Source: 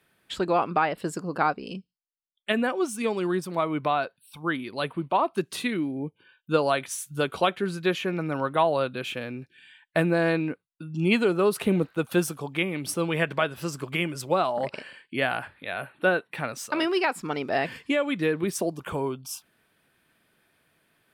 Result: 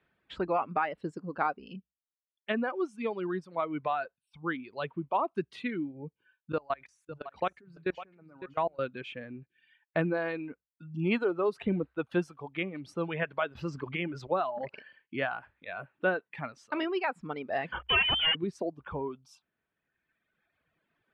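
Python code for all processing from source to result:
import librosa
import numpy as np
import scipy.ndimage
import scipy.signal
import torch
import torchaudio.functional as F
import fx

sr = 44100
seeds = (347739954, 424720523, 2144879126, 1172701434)

y = fx.chain(x, sr, fx.peak_eq(hz=3200.0, db=-8.0, octaves=0.23),
    fx.level_steps(step_db=22),
    fx.echo_single(ms=555, db=-11.5), at=(6.52, 8.79))
y = fx.chain(y, sr, fx.peak_eq(hz=9400.0, db=-13.5, octaves=0.37),
    fx.env_flatten(amount_pct=50), at=(13.55, 14.27))
y = fx.chain(y, sr, fx.leveller(passes=5),
    fx.freq_invert(carrier_hz=3300),
    fx.band_widen(depth_pct=70), at=(17.72, 18.35))
y = scipy.signal.sosfilt(scipy.signal.butter(2, 2600.0, 'lowpass', fs=sr, output='sos'), y)
y = fx.dereverb_blind(y, sr, rt60_s=1.9)
y = fx.peak_eq(y, sr, hz=63.0, db=9.5, octaves=0.23)
y = F.gain(torch.from_numpy(y), -5.0).numpy()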